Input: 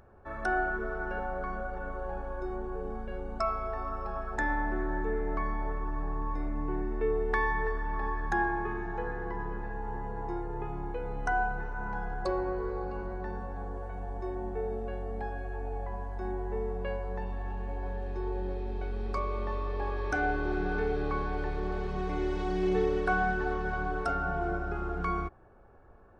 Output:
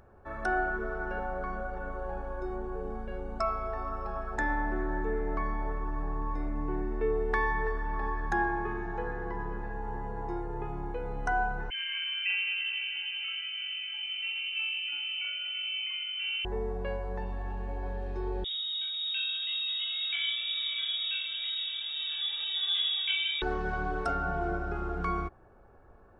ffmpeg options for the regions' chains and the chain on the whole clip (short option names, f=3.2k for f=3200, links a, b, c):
-filter_complex "[0:a]asettb=1/sr,asplit=3[a][b][c];[a]atrim=end=11.704[d];[b]atrim=start=11.7:end=16.45,asetpts=PTS-STARTPTS,afade=t=in:d=0.004:c=qsin,afade=t=out:st=4.746:d=0.004:c=qsin,acrossover=split=1400[e][f];[f]adelay=40[g];[e][g]amix=inputs=2:normalize=0,atrim=end_sample=209475,lowpass=f=2.6k:t=q:w=0.5098,lowpass=f=2.6k:t=q:w=0.6013,lowpass=f=2.6k:t=q:w=0.9,lowpass=f=2.6k:t=q:w=2.563,afreqshift=-3100[h];[c]atrim=start=16.446[i];[d][h]acrossfade=d=0.004:c1=hsin:c2=qsin[j];[j][i]acrossfade=d=0.004:c1=qsin:c2=hsin,asettb=1/sr,asplit=3[k][l][m];[k]atrim=end=18.444[n];[l]atrim=start=18.44:end=23.42,asetpts=PTS-STARTPTS,afade=t=in:d=0.004:c=qsin,afade=t=out:st=4.976:d=0.004:c=qsin,flanger=delay=16.5:depth=6.8:speed=2.1,lowpass=f=3.2k:t=q:w=0.5098,lowpass=f=3.2k:t=q:w=0.6013,lowpass=f=3.2k:t=q:w=0.9,lowpass=f=3.2k:t=q:w=2.563,afreqshift=-3800[o];[m]atrim=start=23.416[p];[n][o]acrossfade=d=0.004:c1=hsin:c2=qsin[q];[q][p]acrossfade=d=0.004:c1=qsin:c2=hsin"